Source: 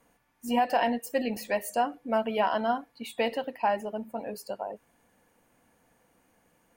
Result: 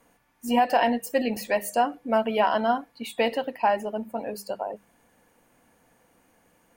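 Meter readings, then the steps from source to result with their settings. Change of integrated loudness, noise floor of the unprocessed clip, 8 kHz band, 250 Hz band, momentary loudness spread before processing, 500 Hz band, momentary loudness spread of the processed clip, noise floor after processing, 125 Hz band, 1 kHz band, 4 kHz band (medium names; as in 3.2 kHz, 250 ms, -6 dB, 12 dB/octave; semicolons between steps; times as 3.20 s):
+4.0 dB, -68 dBFS, +4.0 dB, +4.0 dB, 12 LU, +4.0 dB, 12 LU, -65 dBFS, no reading, +4.0 dB, +4.0 dB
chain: hum notches 50/100/150/200 Hz; trim +4 dB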